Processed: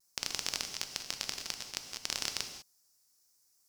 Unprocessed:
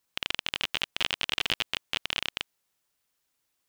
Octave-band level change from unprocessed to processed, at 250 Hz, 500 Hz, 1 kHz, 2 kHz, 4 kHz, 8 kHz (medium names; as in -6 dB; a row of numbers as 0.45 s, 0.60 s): -6.5 dB, -7.0 dB, -8.0 dB, -11.0 dB, -7.5 dB, +7.0 dB